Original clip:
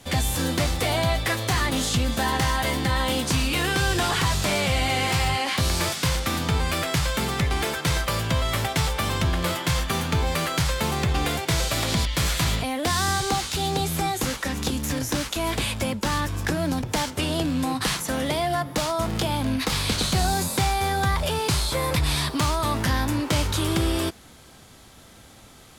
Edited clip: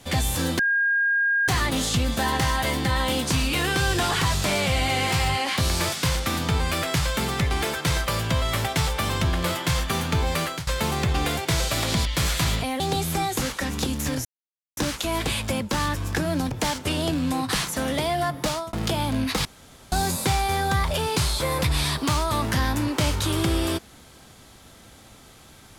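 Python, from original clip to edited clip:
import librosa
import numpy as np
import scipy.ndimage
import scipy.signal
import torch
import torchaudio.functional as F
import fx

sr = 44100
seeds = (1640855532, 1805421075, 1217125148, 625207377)

y = fx.edit(x, sr, fx.bleep(start_s=0.59, length_s=0.89, hz=1620.0, db=-18.5),
    fx.fade_out_to(start_s=10.42, length_s=0.25, floor_db=-20.0),
    fx.cut(start_s=12.8, length_s=0.84),
    fx.insert_silence(at_s=15.09, length_s=0.52),
    fx.fade_out_span(start_s=18.75, length_s=0.3, curve='qsin'),
    fx.room_tone_fill(start_s=19.77, length_s=0.47), tone=tone)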